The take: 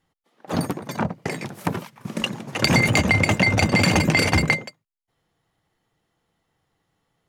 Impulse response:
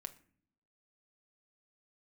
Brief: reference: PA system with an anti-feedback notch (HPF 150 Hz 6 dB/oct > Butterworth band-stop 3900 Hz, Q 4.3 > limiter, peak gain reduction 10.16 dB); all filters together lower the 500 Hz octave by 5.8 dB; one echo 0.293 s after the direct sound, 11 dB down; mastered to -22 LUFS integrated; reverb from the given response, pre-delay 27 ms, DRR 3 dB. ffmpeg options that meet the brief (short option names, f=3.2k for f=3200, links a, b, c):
-filter_complex "[0:a]equalizer=f=500:t=o:g=-7,aecho=1:1:293:0.282,asplit=2[a][b];[1:a]atrim=start_sample=2205,adelay=27[c];[b][c]afir=irnorm=-1:irlink=0,volume=1dB[d];[a][d]amix=inputs=2:normalize=0,highpass=f=150:p=1,asuperstop=centerf=3900:order=8:qfactor=4.3,volume=2.5dB,alimiter=limit=-11dB:level=0:latency=1"